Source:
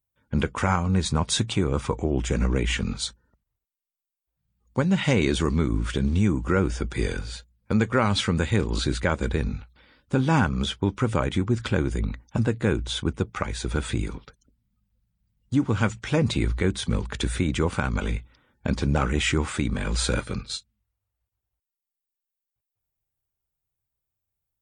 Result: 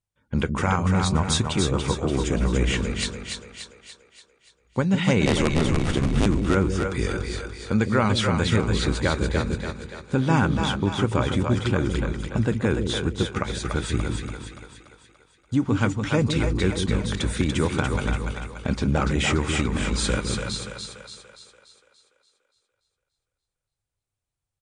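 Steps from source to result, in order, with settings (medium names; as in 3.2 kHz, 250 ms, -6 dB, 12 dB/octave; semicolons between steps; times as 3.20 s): 5.26–6.26 s: cycle switcher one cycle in 2, inverted; on a send: two-band feedback delay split 440 Hz, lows 157 ms, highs 289 ms, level -4.5 dB; on the sum: resampled via 22.05 kHz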